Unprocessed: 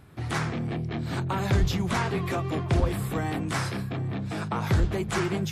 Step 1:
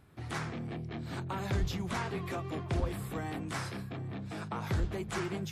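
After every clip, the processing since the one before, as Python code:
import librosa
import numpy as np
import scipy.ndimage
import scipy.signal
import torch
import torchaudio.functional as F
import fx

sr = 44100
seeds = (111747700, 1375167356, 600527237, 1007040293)

y = fx.peak_eq(x, sr, hz=130.0, db=-2.0, octaves=0.77)
y = F.gain(torch.from_numpy(y), -8.0).numpy()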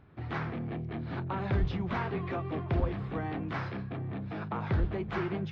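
y = scipy.ndimage.gaussian_filter1d(x, 2.6, mode='constant')
y = F.gain(torch.from_numpy(y), 3.0).numpy()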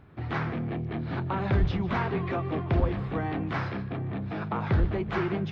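y = x + 10.0 ** (-18.0 / 20.0) * np.pad(x, (int(149 * sr / 1000.0), 0))[:len(x)]
y = F.gain(torch.from_numpy(y), 4.5).numpy()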